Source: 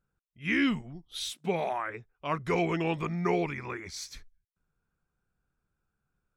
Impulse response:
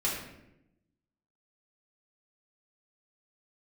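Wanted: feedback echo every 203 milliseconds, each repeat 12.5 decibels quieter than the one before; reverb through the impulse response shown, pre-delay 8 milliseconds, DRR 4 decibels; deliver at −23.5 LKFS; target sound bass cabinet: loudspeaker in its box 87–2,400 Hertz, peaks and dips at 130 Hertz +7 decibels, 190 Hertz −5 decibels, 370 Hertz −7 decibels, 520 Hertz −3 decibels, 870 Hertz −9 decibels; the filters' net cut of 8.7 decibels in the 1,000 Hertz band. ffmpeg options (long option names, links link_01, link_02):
-filter_complex "[0:a]equalizer=frequency=1000:width_type=o:gain=-7,aecho=1:1:203|406|609:0.237|0.0569|0.0137,asplit=2[link_01][link_02];[1:a]atrim=start_sample=2205,adelay=8[link_03];[link_02][link_03]afir=irnorm=-1:irlink=0,volume=-11.5dB[link_04];[link_01][link_04]amix=inputs=2:normalize=0,highpass=frequency=87:width=0.5412,highpass=frequency=87:width=1.3066,equalizer=frequency=130:width_type=q:width=4:gain=7,equalizer=frequency=190:width_type=q:width=4:gain=-5,equalizer=frequency=370:width_type=q:width=4:gain=-7,equalizer=frequency=520:width_type=q:width=4:gain=-3,equalizer=frequency=870:width_type=q:width=4:gain=-9,lowpass=frequency=2400:width=0.5412,lowpass=frequency=2400:width=1.3066,volume=9.5dB"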